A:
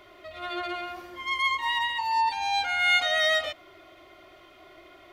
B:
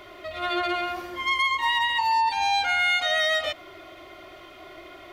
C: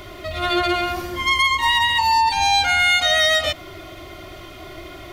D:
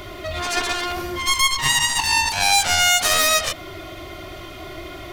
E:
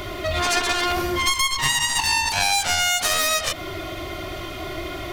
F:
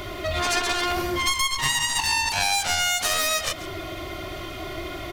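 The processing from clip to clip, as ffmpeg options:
ffmpeg -i in.wav -af "acompressor=threshold=-27dB:ratio=6,volume=7dB" out.wav
ffmpeg -i in.wav -af "bass=frequency=250:gain=13,treble=frequency=4000:gain=8,volume=5dB" out.wav
ffmpeg -i in.wav -af "aeval=exprs='0.531*(cos(1*acos(clip(val(0)/0.531,-1,1)))-cos(1*PI/2))+0.188*(cos(7*acos(clip(val(0)/0.531,-1,1)))-cos(7*PI/2))':channel_layout=same,volume=-1dB" out.wav
ffmpeg -i in.wav -af "acompressor=threshold=-21dB:ratio=4,volume=4dB" out.wav
ffmpeg -i in.wav -af "aecho=1:1:139:0.158,volume=-2.5dB" out.wav

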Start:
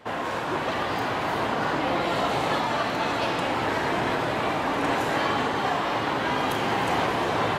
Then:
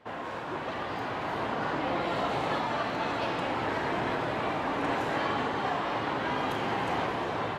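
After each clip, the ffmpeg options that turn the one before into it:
ffmpeg -i in.wav -af "lowpass=frequency=3800:poles=1,dynaudnorm=framelen=500:gausssize=5:maxgain=3dB,volume=-7.5dB" out.wav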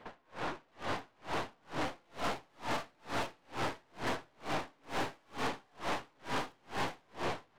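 ffmpeg -i in.wav -af "aeval=exprs='(tanh(89.1*val(0)+0.8)-tanh(0.8))/89.1':channel_layout=same,aeval=exprs='val(0)*pow(10,-38*(0.5-0.5*cos(2*PI*2.2*n/s))/20)':channel_layout=same,volume=8dB" out.wav

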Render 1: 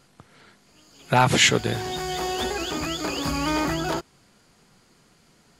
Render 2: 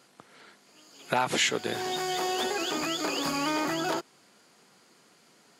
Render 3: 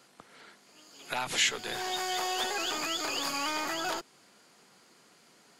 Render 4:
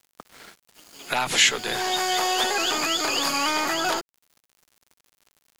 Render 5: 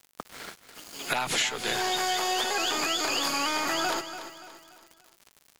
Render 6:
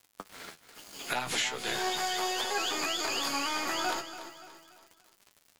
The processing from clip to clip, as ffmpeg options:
ffmpeg -i in.wav -af "highpass=260,acompressor=threshold=-26dB:ratio=2.5" out.wav
ffmpeg -i in.wav -filter_complex "[0:a]acrossover=split=580|2100[link_01][link_02][link_03];[link_01]aeval=exprs='(tanh(141*val(0)+0.4)-tanh(0.4))/141':channel_layout=same[link_04];[link_02]alimiter=level_in=2.5dB:limit=-24dB:level=0:latency=1:release=276,volume=-2.5dB[link_05];[link_04][link_05][link_03]amix=inputs=3:normalize=0" out.wav
ffmpeg -i in.wav -af "aeval=exprs='val(0)*gte(abs(val(0)),0.00266)':channel_layout=same,volume=8.5dB" out.wav
ffmpeg -i in.wav -filter_complex "[0:a]acompressor=threshold=-30dB:ratio=6,asplit=2[link_01][link_02];[link_02]aecho=0:1:288|576|864|1152:0.266|0.112|0.0469|0.0197[link_03];[link_01][link_03]amix=inputs=2:normalize=0,volume=4.5dB" out.wav
ffmpeg -i in.wav -af "flanger=delay=9.8:depth=6.5:regen=40:speed=0.39:shape=sinusoidal" out.wav

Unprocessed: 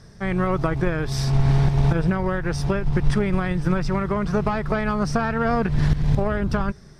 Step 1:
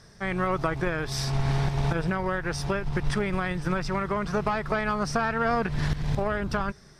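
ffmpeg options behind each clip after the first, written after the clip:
ffmpeg -i in.wav -af "lowshelf=frequency=440:gain=-8.5" out.wav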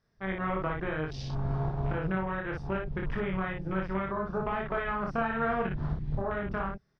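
ffmpeg -i in.wav -filter_complex "[0:a]afwtdn=0.0224,lowpass=3800,asplit=2[link_01][link_02];[link_02]aecho=0:1:26|58:0.668|0.708[link_03];[link_01][link_03]amix=inputs=2:normalize=0,volume=-7dB" out.wav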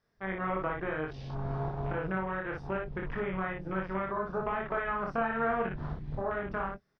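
ffmpeg -i in.wav -filter_complex "[0:a]acrossover=split=2800[link_01][link_02];[link_02]acompressor=threshold=-59dB:ratio=4:attack=1:release=60[link_03];[link_01][link_03]amix=inputs=2:normalize=0,bass=frequency=250:gain=-6,treble=frequency=4000:gain=-3,asplit=2[link_04][link_05];[link_05]adelay=22,volume=-14dB[link_06];[link_04][link_06]amix=inputs=2:normalize=0" out.wav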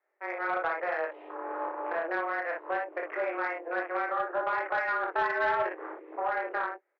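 ffmpeg -i in.wav -af "dynaudnorm=framelen=110:gausssize=7:maxgain=4dB,highpass=frequency=220:width_type=q:width=0.5412,highpass=frequency=220:width_type=q:width=1.307,lowpass=frequency=2300:width_type=q:width=0.5176,lowpass=frequency=2300:width_type=q:width=0.7071,lowpass=frequency=2300:width_type=q:width=1.932,afreqshift=170,asoftclip=type=tanh:threshold=-18.5dB" out.wav

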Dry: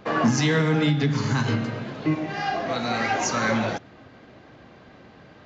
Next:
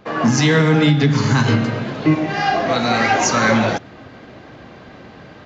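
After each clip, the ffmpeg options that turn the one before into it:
ffmpeg -i in.wav -af "dynaudnorm=framelen=170:gausssize=3:maxgain=9dB" out.wav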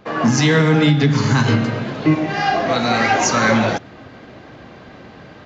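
ffmpeg -i in.wav -af anull out.wav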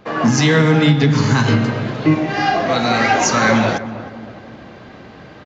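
ffmpeg -i in.wav -filter_complex "[0:a]asplit=2[link_01][link_02];[link_02]adelay=312,lowpass=frequency=1200:poles=1,volume=-13dB,asplit=2[link_03][link_04];[link_04]adelay=312,lowpass=frequency=1200:poles=1,volume=0.49,asplit=2[link_05][link_06];[link_06]adelay=312,lowpass=frequency=1200:poles=1,volume=0.49,asplit=2[link_07][link_08];[link_08]adelay=312,lowpass=frequency=1200:poles=1,volume=0.49,asplit=2[link_09][link_10];[link_10]adelay=312,lowpass=frequency=1200:poles=1,volume=0.49[link_11];[link_01][link_03][link_05][link_07][link_09][link_11]amix=inputs=6:normalize=0,volume=1dB" out.wav

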